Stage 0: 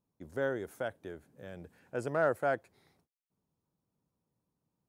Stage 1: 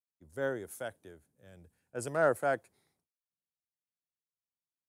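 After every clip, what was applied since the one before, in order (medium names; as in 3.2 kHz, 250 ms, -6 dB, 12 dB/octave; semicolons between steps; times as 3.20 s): peaking EQ 9.9 kHz +10.5 dB 1.1 oct; three bands expanded up and down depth 70%; trim -2.5 dB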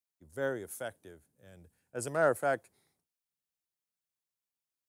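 treble shelf 5.8 kHz +4 dB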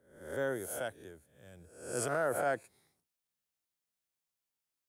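reverse spectral sustain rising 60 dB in 0.59 s; peak limiter -22.5 dBFS, peak gain reduction 8 dB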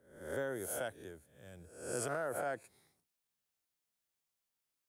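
compression 6:1, threshold -35 dBFS, peak gain reduction 7.5 dB; trim +1 dB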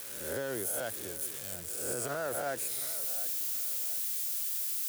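zero-crossing glitches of -34 dBFS; peak limiter -30.5 dBFS, peak gain reduction 5.5 dB; feedback echo behind a low-pass 721 ms, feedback 35%, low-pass 2.8 kHz, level -15 dB; trim +4.5 dB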